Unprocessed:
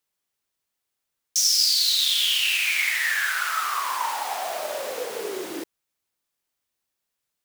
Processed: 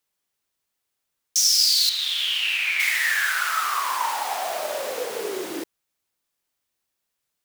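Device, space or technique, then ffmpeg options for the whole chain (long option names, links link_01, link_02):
parallel distortion: -filter_complex "[0:a]asettb=1/sr,asplit=3[link_01][link_02][link_03];[link_01]atrim=end=1.894[link_04];[link_02]atrim=start=1.89:end=2.8,asetpts=PTS-STARTPTS,afade=type=in:duration=0.004:curve=qsin,afade=type=out:start_time=0.906:duration=0.004:curve=qsin,bass=frequency=250:gain=-1,treble=frequency=4000:gain=-12[link_05];[link_03]atrim=start=2.796[link_06];[link_04][link_05]acrossfade=duration=0.004:curve1=hsin:curve2=qsin[link_07];[link_07][link_06]acrossfade=duration=0.004:curve1=qsin:curve2=hsin,asplit=2[link_08][link_09];[link_09]asoftclip=type=hard:threshold=-16.5dB,volume=-13dB[link_10];[link_08][link_10]amix=inputs=2:normalize=0"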